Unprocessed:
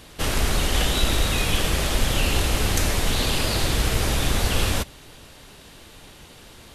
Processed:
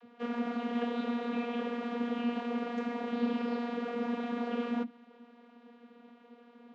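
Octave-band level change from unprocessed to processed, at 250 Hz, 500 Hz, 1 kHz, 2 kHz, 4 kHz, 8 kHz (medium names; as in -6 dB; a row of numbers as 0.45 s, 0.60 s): -1.5 dB, -7.0 dB, -8.5 dB, -16.0 dB, -24.5 dB, under -40 dB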